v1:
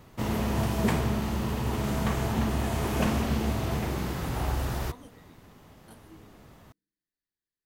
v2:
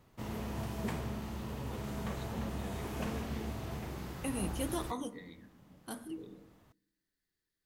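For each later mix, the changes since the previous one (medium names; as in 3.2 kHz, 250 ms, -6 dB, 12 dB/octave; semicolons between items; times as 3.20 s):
first voice +8.5 dB; second voice +10.5 dB; background -11.5 dB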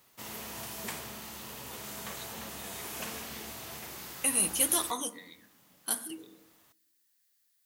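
second voice +5.5 dB; master: add tilt EQ +4 dB/octave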